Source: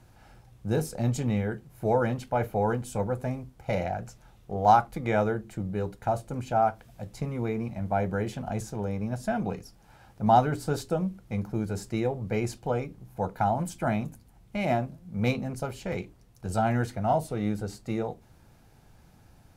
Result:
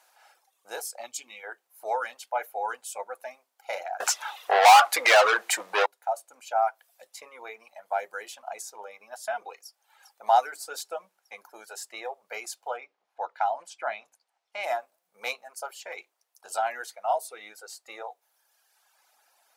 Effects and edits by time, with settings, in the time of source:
1.06–1.43 s: time-frequency box 400–2100 Hz -9 dB
4.00–5.86 s: overdrive pedal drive 35 dB, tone 3.9 kHz, clips at -7 dBFS
7.29–7.99 s: treble shelf 7.7 kHz -3.5 dB
9.57–10.25 s: echo throw 400 ms, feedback 75%, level -10 dB
12.76–14.62 s: low-pass 3.6 kHz -> 6 kHz
whole clip: high-pass 650 Hz 24 dB/octave; treble shelf 5.1 kHz +5 dB; reverb removal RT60 1.5 s; trim +1.5 dB

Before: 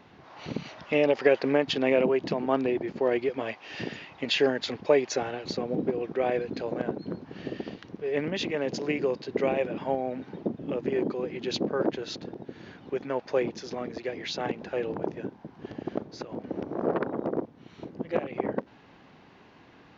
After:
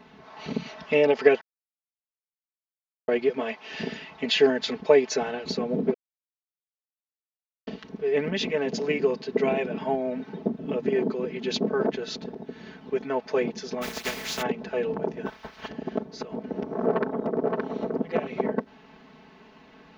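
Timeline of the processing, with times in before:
1.41–3.08 s: mute
5.94–7.67 s: mute
13.81–14.41 s: spectral contrast reduction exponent 0.33
15.25–15.67 s: spectral peaks clipped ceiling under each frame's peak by 27 dB
16.86–17.94 s: echo throw 570 ms, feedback 10%, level -2.5 dB
whole clip: comb 4.6 ms, depth 92%

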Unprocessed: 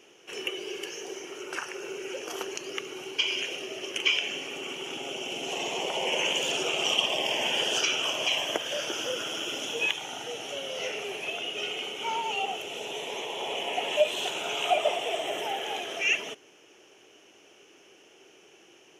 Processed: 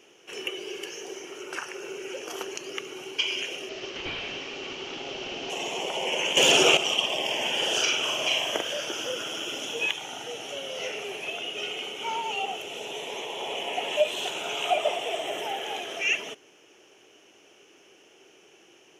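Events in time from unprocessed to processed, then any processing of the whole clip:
3.69–5.50 s: one-bit delta coder 32 kbps, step -39 dBFS
6.37–6.77 s: gain +10.5 dB
7.58–8.72 s: doubling 43 ms -3 dB

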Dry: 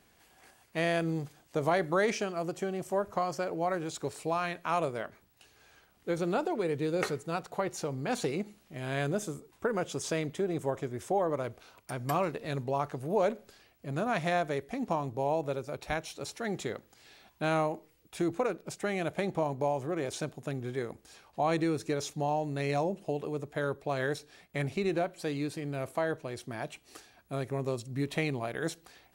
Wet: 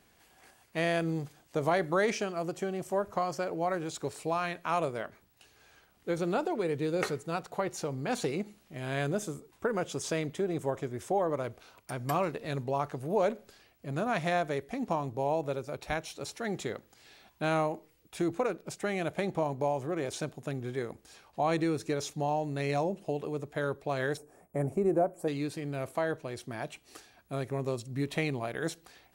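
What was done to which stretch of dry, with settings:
24.17–25.28 s: FFT filter 110 Hz 0 dB, 640 Hz +5 dB, 1.1 kHz -1 dB, 3.9 kHz -26 dB, 8.2 kHz 0 dB

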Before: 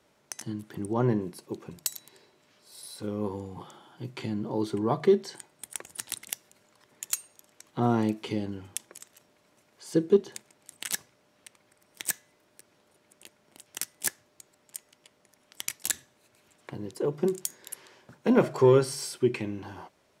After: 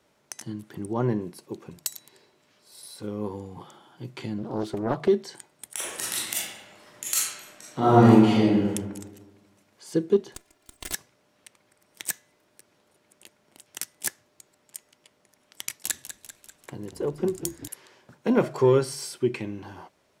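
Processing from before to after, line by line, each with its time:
4.38–5.08 s: loudspeaker Doppler distortion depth 0.59 ms
5.73–8.70 s: reverb throw, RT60 1.3 s, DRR -10 dB
10.34–10.94 s: comb filter that takes the minimum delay 2.9 ms
15.69–17.68 s: frequency-shifting echo 196 ms, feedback 57%, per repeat -39 Hz, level -11 dB

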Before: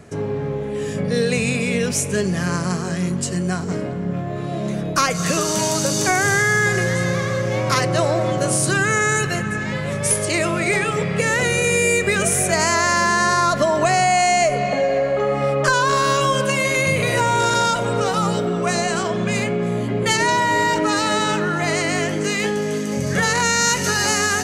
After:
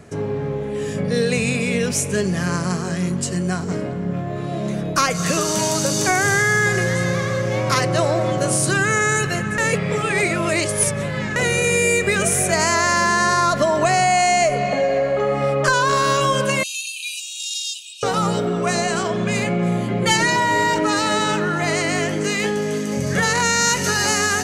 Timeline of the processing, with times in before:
9.58–11.36 s: reverse
16.63–18.03 s: brick-wall FIR high-pass 2.4 kHz
19.44–20.36 s: comb 5.8 ms

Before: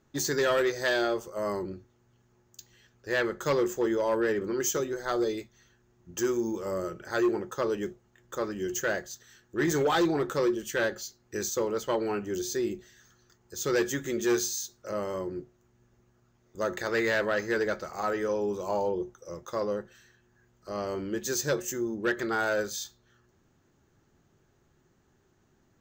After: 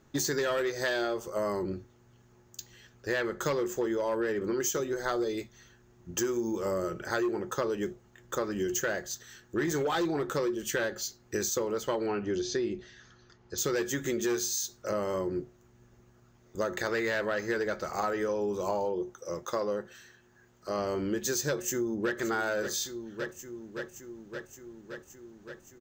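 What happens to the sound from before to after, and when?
12.06–13.58 s: low-pass 5.2 kHz 24 dB/octave
18.85–20.79 s: bass shelf 130 Hz -9.5 dB
21.48–22.17 s: echo throw 570 ms, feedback 75%, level -12 dB
whole clip: compression, threshold -33 dBFS; trim +5.5 dB

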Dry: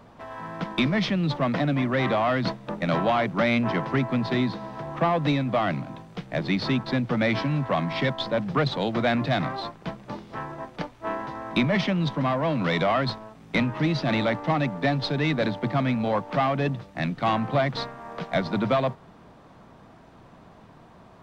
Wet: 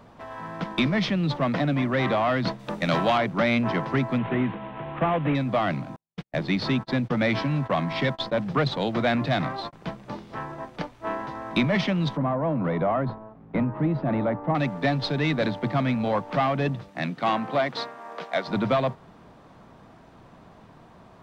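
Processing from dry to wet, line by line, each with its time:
2.59–3.18 s: treble shelf 2.9 kHz +9.5 dB
4.18–5.35 s: CVSD coder 16 kbps
5.96–9.73 s: gate -34 dBFS, range -52 dB
12.17–14.55 s: low-pass 1.1 kHz
16.88–18.47 s: high-pass 150 Hz -> 420 Hz

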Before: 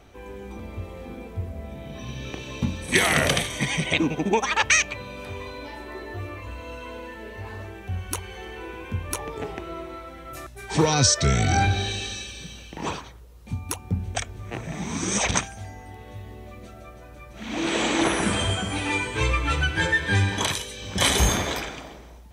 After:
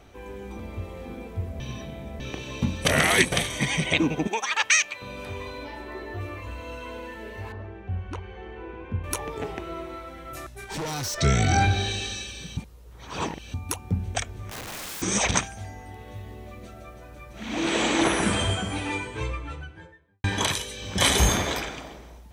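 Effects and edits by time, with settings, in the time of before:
1.60–2.20 s: reverse
2.85–3.32 s: reverse
4.27–5.02 s: high-pass 1.3 kHz 6 dB/octave
5.64–6.21 s: peaking EQ 10 kHz -5 dB 1.9 oct
7.52–9.04 s: tape spacing loss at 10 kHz 34 dB
10.64–11.18 s: valve stage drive 29 dB, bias 0.55
12.57–13.54 s: reverse
14.49–15.02 s: integer overflow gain 31.5 dB
15.97–17.39 s: companded quantiser 8-bit
18.24–20.24 s: studio fade out

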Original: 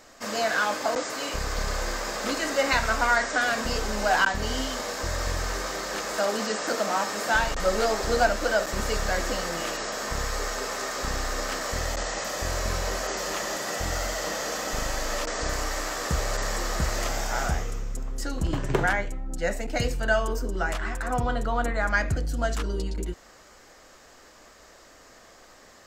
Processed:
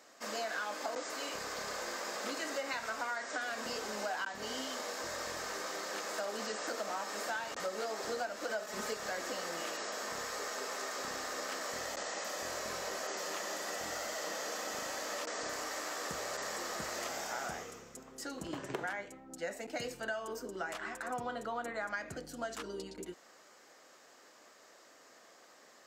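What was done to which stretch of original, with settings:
8.49–8.94 s: comb 4.7 ms, depth 82%
whole clip: high-pass 250 Hz 12 dB/octave; compression 6:1, threshold -27 dBFS; trim -7.5 dB

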